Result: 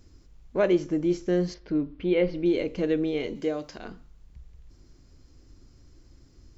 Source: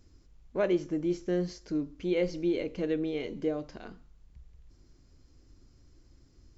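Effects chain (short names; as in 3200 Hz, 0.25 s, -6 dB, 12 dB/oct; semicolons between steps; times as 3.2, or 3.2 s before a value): 1.54–2.46 LPF 3600 Hz 24 dB/oct; 3.35–3.78 tilt +2 dB/oct; gain +5 dB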